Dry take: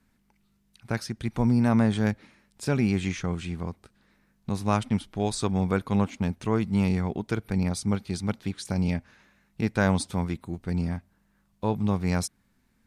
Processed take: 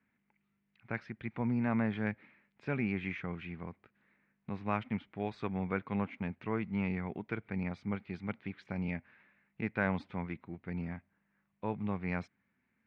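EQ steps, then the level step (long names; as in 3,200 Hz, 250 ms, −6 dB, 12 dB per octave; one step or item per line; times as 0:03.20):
high-pass filter 110 Hz 12 dB per octave
transistor ladder low-pass 2,600 Hz, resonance 50%
0.0 dB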